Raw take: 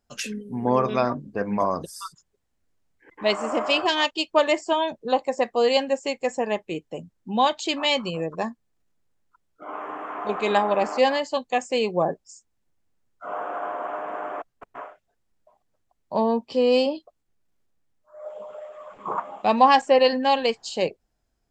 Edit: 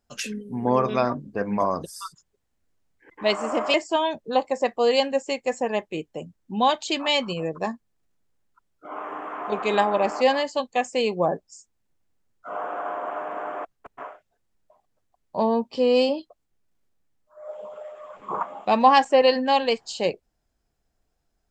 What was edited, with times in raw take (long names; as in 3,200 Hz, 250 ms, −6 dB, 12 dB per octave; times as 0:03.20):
0:03.74–0:04.51: remove